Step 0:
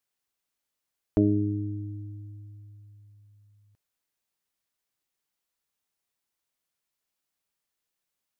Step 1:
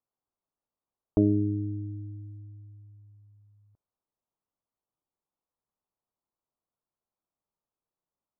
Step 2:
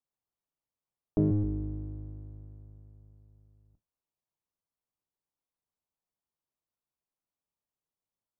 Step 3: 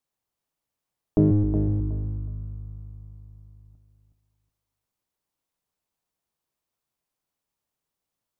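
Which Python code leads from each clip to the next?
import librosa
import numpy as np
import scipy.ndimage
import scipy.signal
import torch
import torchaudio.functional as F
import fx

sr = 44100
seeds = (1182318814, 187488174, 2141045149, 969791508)

y1 = scipy.signal.sosfilt(scipy.signal.butter(6, 1200.0, 'lowpass', fs=sr, output='sos'), x)
y2 = fx.octave_divider(y1, sr, octaves=1, level_db=-1.0)
y2 = y2 * librosa.db_to_amplitude(-5.0)
y3 = fx.echo_feedback(y2, sr, ms=368, feedback_pct=24, wet_db=-7.5)
y3 = y3 * librosa.db_to_amplitude(7.0)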